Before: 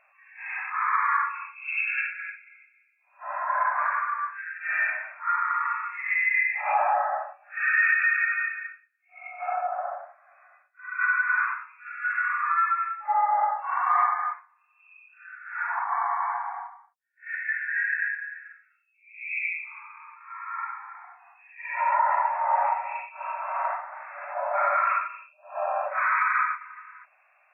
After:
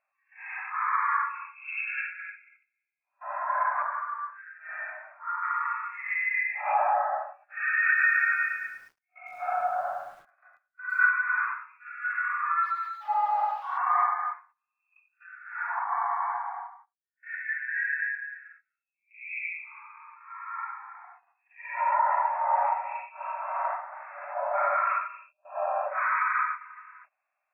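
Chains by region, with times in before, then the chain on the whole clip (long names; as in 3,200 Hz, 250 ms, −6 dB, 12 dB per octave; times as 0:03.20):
0:03.82–0:05.43: low-pass filter 1,200 Hz + mains-hum notches 50/100/150/200/250/300/350 Hz
0:07.86–0:11.09: parametric band 1,500 Hz +8 dB 0.31 octaves + feedback echo at a low word length 108 ms, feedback 35%, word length 8 bits, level −8 dB
0:12.63–0:13.78: spike at every zero crossing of −24.5 dBFS + Butterworth high-pass 630 Hz + high-frequency loss of the air 360 metres
0:17.40–0:18.38: dynamic equaliser 1,000 Hz, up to −3 dB, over −40 dBFS, Q 0.79 + comb filter 7.3 ms, depth 67%
whole clip: noise gate −51 dBFS, range −16 dB; high-shelf EQ 2,200 Hz −9.5 dB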